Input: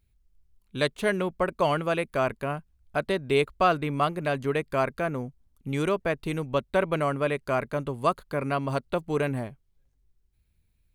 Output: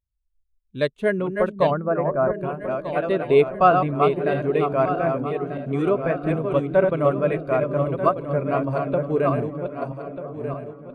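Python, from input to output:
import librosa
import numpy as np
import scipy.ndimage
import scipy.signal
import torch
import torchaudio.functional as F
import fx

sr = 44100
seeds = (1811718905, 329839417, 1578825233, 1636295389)

p1 = fx.reverse_delay_fb(x, sr, ms=620, feedback_pct=63, wet_db=-4)
p2 = fx.lowpass(p1, sr, hz=1800.0, slope=24, at=(1.7, 2.33), fade=0.02)
p3 = p2 + fx.echo_stepped(p2, sr, ms=435, hz=210.0, octaves=0.7, feedback_pct=70, wet_db=-6, dry=0)
p4 = fx.spectral_expand(p3, sr, expansion=1.5)
y = p4 * librosa.db_to_amplitude(4.0)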